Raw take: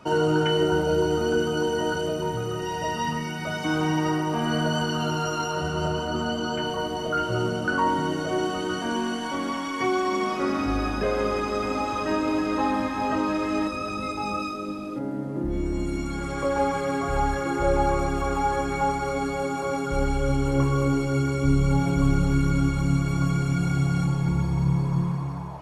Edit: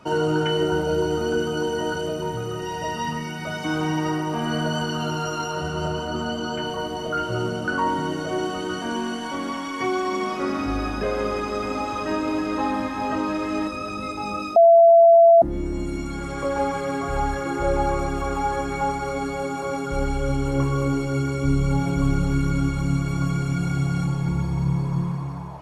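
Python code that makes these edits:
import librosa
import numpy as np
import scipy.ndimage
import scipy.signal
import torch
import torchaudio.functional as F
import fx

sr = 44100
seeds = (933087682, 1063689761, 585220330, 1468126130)

y = fx.edit(x, sr, fx.bleep(start_s=14.56, length_s=0.86, hz=673.0, db=-8.5), tone=tone)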